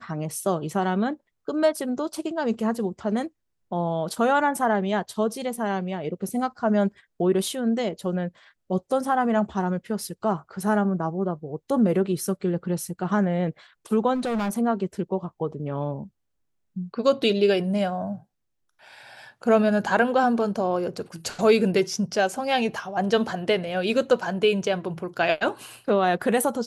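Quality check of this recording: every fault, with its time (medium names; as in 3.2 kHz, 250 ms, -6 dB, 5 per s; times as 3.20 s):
14.14–14.58 s: clipped -23 dBFS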